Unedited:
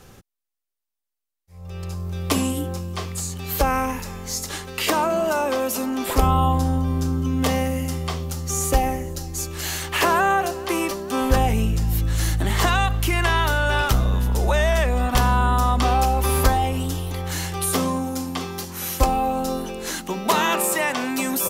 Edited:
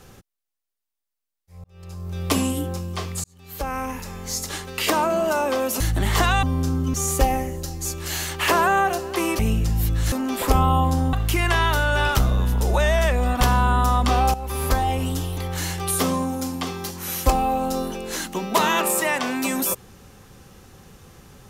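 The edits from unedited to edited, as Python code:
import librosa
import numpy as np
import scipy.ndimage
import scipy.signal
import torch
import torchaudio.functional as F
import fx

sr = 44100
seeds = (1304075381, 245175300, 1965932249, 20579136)

y = fx.edit(x, sr, fx.fade_in_span(start_s=1.64, length_s=0.58),
    fx.fade_in_span(start_s=3.24, length_s=1.04),
    fx.swap(start_s=5.8, length_s=1.01, other_s=12.24, other_length_s=0.63),
    fx.cut(start_s=7.32, length_s=1.15),
    fx.cut(start_s=10.92, length_s=0.59),
    fx.fade_in_from(start_s=16.08, length_s=0.64, floor_db=-13.5), tone=tone)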